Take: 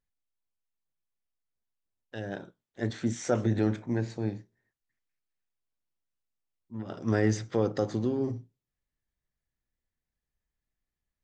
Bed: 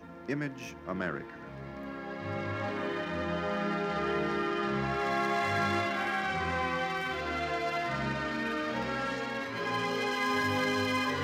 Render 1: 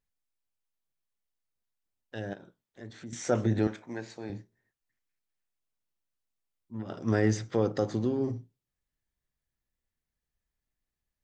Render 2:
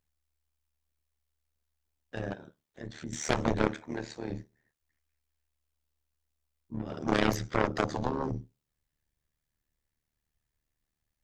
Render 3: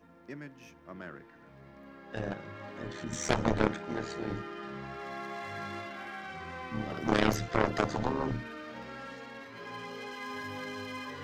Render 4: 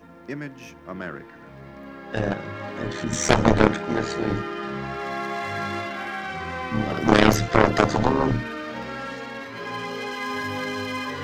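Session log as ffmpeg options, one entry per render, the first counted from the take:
ffmpeg -i in.wav -filter_complex "[0:a]asettb=1/sr,asplit=3[link_01][link_02][link_03];[link_01]atrim=end=2.334[link_04];[link_02]atrim=start=2.33:end=3.13,asetpts=PTS-STARTPTS,afade=type=in:duration=0.004:curve=qsin,afade=type=out:start_time=0.796:duration=0.004:curve=qsin,acompressor=threshold=-51dB:ratio=2:attack=3.2:release=140:knee=1:detection=peak[link_05];[link_03]atrim=start=3.126[link_06];[link_04][link_05]acrossfade=duration=0.004:curve1=hsin:curve2=qsin[link_07];[link_07][link_06]acrossfade=duration=0.004:curve1=qsin:curve2=hsin,asettb=1/sr,asplit=3[link_08][link_09][link_10];[link_08]atrim=end=3.674[link_11];[link_09]atrim=start=3.67:end=4.3,asetpts=PTS-STARTPTS,afade=type=in:duration=0.004:curve=qsin,afade=type=out:start_time=0.626:duration=0.004:curve=qsin,highpass=frequency=710:poles=1[link_12];[link_10]atrim=start=4.296[link_13];[link_11][link_12]acrossfade=duration=0.004:curve1=hsin:curve2=qsin[link_14];[link_14][link_13]acrossfade=duration=0.004:curve1=qsin:curve2=hsin" out.wav
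ffmpeg -i in.wav -af "aeval=exprs='0.224*(cos(1*acos(clip(val(0)/0.224,-1,1)))-cos(1*PI/2))+0.1*(cos(7*acos(clip(val(0)/0.224,-1,1)))-cos(7*PI/2))':channel_layout=same,tremolo=f=75:d=0.824" out.wav
ffmpeg -i in.wav -i bed.wav -filter_complex "[1:a]volume=-10.5dB[link_01];[0:a][link_01]amix=inputs=2:normalize=0" out.wav
ffmpeg -i in.wav -af "volume=11dB,alimiter=limit=-2dB:level=0:latency=1" out.wav

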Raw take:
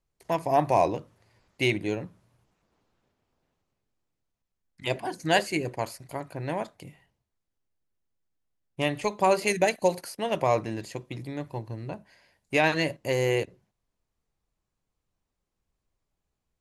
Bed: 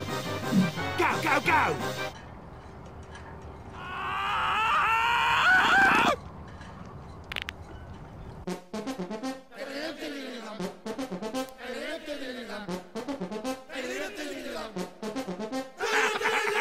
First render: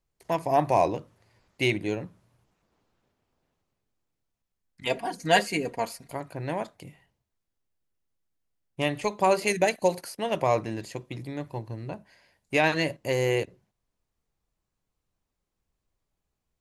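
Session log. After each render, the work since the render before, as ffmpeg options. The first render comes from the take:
ffmpeg -i in.wav -filter_complex "[0:a]asettb=1/sr,asplit=3[link_01][link_02][link_03];[link_01]atrim=end=4.854[link_04];[link_02]atrim=start=4.85:end=6.11,asetpts=PTS-STARTPTS,afade=type=in:duration=0.004:curve=qsin,afade=type=out:start_time=1.256:duration=0.004:curve=qsin,aecho=1:1:4.3:0.65,atrim=end_sample=55566[link_05];[link_03]atrim=start=6.106[link_06];[link_04][link_05]acrossfade=duration=0.004:curve1=hsin:curve2=qsin[link_07];[link_07][link_06]acrossfade=duration=0.004:curve1=qsin:curve2=hsin" out.wav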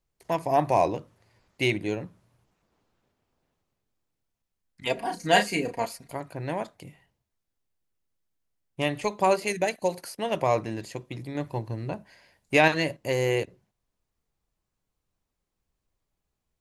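ffmpeg -i in.wav -filter_complex "[0:a]asettb=1/sr,asplit=3[link_01][link_02][link_03];[link_01]atrim=end=4.944[link_04];[link_02]atrim=start=4.94:end=5.86,asetpts=PTS-STARTPTS,afade=type=in:duration=0.004:curve=qsin,afade=type=out:start_time=0.916:duration=0.004:curve=qsin,asplit=2[link_05][link_06];[link_06]adelay=34,volume=-7dB[link_07];[link_05][link_07]amix=inputs=2:normalize=0,atrim=end_sample=40572[link_08];[link_03]atrim=start=5.856[link_09];[link_04][link_08]acrossfade=duration=0.004:curve1=hsin:curve2=qsin[link_10];[link_10][link_09]acrossfade=duration=0.004:curve1=qsin:curve2=hsin,asplit=5[link_11][link_12][link_13][link_14][link_15];[link_11]atrim=end=9.362[link_16];[link_12]atrim=start=9.358:end=10.012,asetpts=PTS-STARTPTS,volume=-3dB[link_17];[link_13]atrim=start=10.008:end=11.352[link_18];[link_14]atrim=start=11.348:end=12.682,asetpts=PTS-STARTPTS,volume=3.5dB[link_19];[link_15]atrim=start=12.678[link_20];[link_16][link_17]acrossfade=duration=0.004:curve1=hsin:curve2=hsin[link_21];[link_21][link_18]acrossfade=duration=0.004:curve1=hsin:curve2=hsin[link_22];[link_22][link_19]acrossfade=duration=0.004:curve1=hsin:curve2=hsin[link_23];[link_23][link_20]acrossfade=duration=0.004:curve1=hsin:curve2=hsin" out.wav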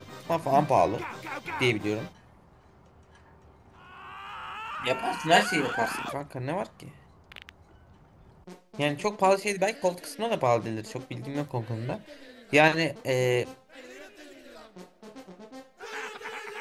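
ffmpeg -i in.wav -i bed.wav -filter_complex "[1:a]volume=-12dB[link_01];[0:a][link_01]amix=inputs=2:normalize=0" out.wav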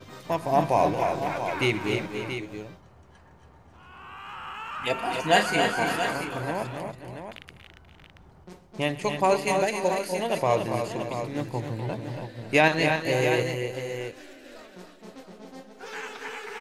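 ffmpeg -i in.wav -af "aecho=1:1:122|248|281|530|564|679:0.106|0.282|0.473|0.188|0.106|0.355" out.wav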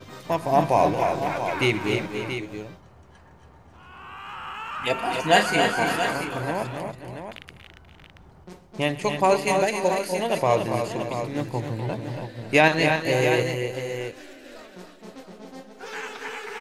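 ffmpeg -i in.wav -af "volume=2.5dB" out.wav

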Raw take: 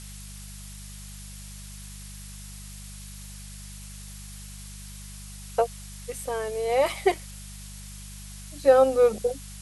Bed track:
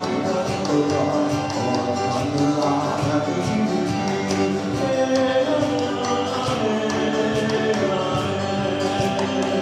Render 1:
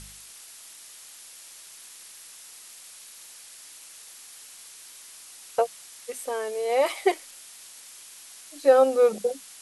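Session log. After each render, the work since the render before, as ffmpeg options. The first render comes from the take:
ffmpeg -i in.wav -af "bandreject=frequency=50:width_type=h:width=4,bandreject=frequency=100:width_type=h:width=4,bandreject=frequency=150:width_type=h:width=4,bandreject=frequency=200:width_type=h:width=4" out.wav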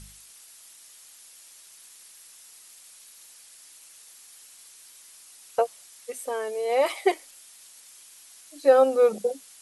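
ffmpeg -i in.wav -af "afftdn=noise_reduction=6:noise_floor=-47" out.wav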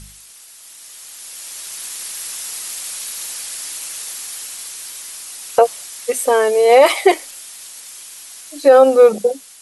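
ffmpeg -i in.wav -af "dynaudnorm=framelen=580:gausssize=5:maxgain=14.5dB,alimiter=level_in=7.5dB:limit=-1dB:release=50:level=0:latency=1" out.wav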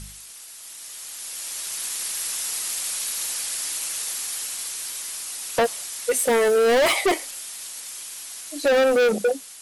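ffmpeg -i in.wav -af "asoftclip=type=hard:threshold=-16dB" out.wav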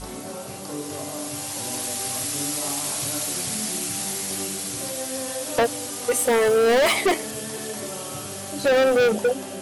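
ffmpeg -i in.wav -i bed.wav -filter_complex "[1:a]volume=-13.5dB[link_01];[0:a][link_01]amix=inputs=2:normalize=0" out.wav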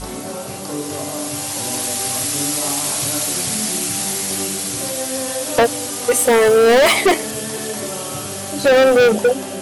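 ffmpeg -i in.wav -af "volume=6.5dB" out.wav

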